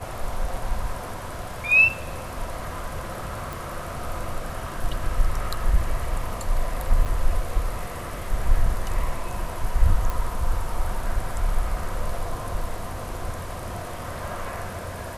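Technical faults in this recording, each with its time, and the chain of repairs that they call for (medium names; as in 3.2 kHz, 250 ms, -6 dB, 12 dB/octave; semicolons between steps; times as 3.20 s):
3.53 s: pop
7.05–7.06 s: dropout 7.6 ms
10.10 s: pop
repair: de-click; interpolate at 7.05 s, 7.6 ms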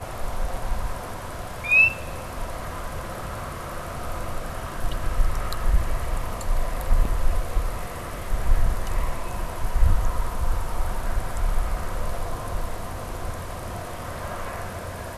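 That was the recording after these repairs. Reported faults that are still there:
nothing left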